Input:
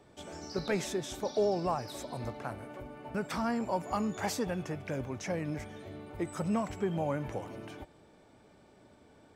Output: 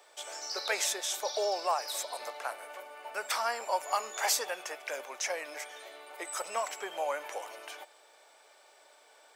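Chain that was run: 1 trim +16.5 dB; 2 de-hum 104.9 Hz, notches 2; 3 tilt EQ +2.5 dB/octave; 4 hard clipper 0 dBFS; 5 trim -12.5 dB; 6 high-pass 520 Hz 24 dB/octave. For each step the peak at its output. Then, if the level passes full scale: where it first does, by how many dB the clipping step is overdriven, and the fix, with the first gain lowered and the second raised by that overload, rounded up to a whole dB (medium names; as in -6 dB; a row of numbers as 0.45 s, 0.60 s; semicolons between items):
-4.5 dBFS, -3.0 dBFS, -3.0 dBFS, -3.0 dBFS, -15.5 dBFS, -15.5 dBFS; nothing clips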